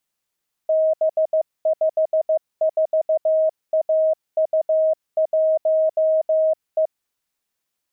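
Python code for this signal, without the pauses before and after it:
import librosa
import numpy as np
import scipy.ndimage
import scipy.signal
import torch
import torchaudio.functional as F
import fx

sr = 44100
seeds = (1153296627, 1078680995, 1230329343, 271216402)

y = fx.morse(sr, text='B54AU1E', wpm=15, hz=632.0, level_db=-14.5)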